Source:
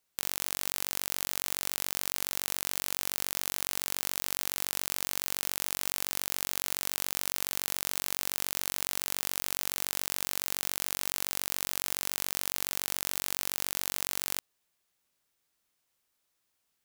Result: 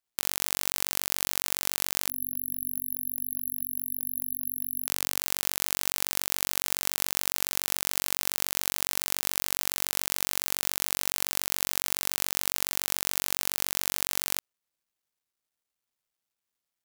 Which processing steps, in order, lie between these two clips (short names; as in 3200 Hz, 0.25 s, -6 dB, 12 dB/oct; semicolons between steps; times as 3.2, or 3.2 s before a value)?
G.711 law mismatch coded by A; 2.1–4.87 spectral delete 270–11000 Hz; 2.86–5.19 low shelf 110 Hz -9 dB; gain +3.5 dB